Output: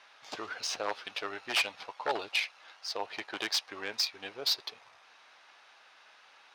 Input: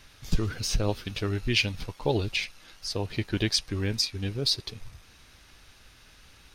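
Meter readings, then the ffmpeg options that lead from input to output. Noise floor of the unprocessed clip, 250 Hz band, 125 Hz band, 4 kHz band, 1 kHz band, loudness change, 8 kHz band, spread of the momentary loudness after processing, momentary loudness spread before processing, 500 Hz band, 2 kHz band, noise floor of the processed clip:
-56 dBFS, -16.5 dB, under -30 dB, -3.5 dB, +3.0 dB, -4.5 dB, -4.5 dB, 10 LU, 8 LU, -7.0 dB, -1.0 dB, -60 dBFS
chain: -af "aeval=exprs='0.106*(abs(mod(val(0)/0.106+3,4)-2)-1)':c=same,adynamicsmooth=sensitivity=2.5:basefreq=4300,highpass=f=770:t=q:w=1.7"

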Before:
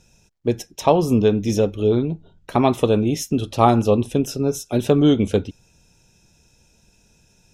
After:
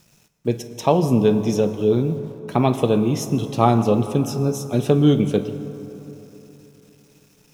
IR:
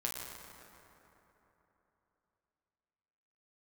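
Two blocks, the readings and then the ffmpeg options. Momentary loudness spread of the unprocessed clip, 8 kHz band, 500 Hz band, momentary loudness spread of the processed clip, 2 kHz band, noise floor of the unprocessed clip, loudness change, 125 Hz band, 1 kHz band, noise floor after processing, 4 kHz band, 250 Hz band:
9 LU, -2.0 dB, -1.0 dB, 13 LU, -2.0 dB, -59 dBFS, -0.5 dB, +2.0 dB, -1.5 dB, -57 dBFS, -2.0 dB, 0.0 dB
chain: -filter_complex "[0:a]lowshelf=f=100:t=q:w=3:g=-9,acrusher=bits=8:mix=0:aa=0.000001,asplit=2[s0][s1];[1:a]atrim=start_sample=2205[s2];[s1][s2]afir=irnorm=-1:irlink=0,volume=0.447[s3];[s0][s3]amix=inputs=2:normalize=0,volume=0.562"

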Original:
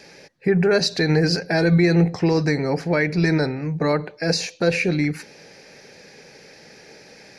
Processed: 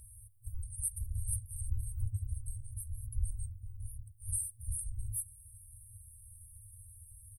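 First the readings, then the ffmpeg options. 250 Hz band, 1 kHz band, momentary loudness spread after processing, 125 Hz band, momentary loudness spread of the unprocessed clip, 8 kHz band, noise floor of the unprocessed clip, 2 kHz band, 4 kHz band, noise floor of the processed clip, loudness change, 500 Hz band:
under -40 dB, under -40 dB, 17 LU, -17.5 dB, 6 LU, -2.5 dB, -47 dBFS, under -40 dB, under -40 dB, -57 dBFS, -19.0 dB, under -40 dB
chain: -af "aecho=1:1:2.7:0.65,afftfilt=real='re*(1-between(b*sr/4096,110,8400))':imag='im*(1-between(b*sr/4096,110,8400))':win_size=4096:overlap=0.75,volume=3.55"

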